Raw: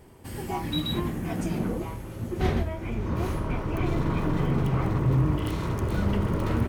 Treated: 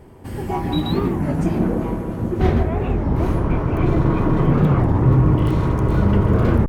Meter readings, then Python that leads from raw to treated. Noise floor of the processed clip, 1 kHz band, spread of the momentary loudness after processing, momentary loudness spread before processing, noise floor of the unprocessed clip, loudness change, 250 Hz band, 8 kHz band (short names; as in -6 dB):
-29 dBFS, +8.0 dB, 8 LU, 9 LU, -39 dBFS, +9.0 dB, +9.5 dB, n/a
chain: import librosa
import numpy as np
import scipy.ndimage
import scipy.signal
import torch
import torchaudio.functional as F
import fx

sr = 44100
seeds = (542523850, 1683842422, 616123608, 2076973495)

y = fx.high_shelf(x, sr, hz=2200.0, db=-10.5)
y = fx.echo_bbd(y, sr, ms=161, stages=2048, feedback_pct=77, wet_db=-7.0)
y = fx.record_warp(y, sr, rpm=33.33, depth_cents=250.0)
y = F.gain(torch.from_numpy(y), 8.0).numpy()